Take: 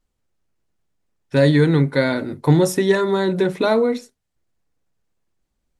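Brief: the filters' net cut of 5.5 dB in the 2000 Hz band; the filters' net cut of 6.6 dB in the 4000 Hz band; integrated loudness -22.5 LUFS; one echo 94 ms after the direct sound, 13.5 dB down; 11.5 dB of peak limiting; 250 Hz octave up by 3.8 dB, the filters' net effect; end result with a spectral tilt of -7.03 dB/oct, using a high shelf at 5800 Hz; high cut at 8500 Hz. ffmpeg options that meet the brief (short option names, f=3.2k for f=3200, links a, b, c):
-af "lowpass=8.5k,equalizer=f=250:t=o:g=5.5,equalizer=f=2k:t=o:g=-6.5,equalizer=f=4k:t=o:g=-8.5,highshelf=f=5.8k:g=8,alimiter=limit=-12.5dB:level=0:latency=1,aecho=1:1:94:0.211,volume=-1.5dB"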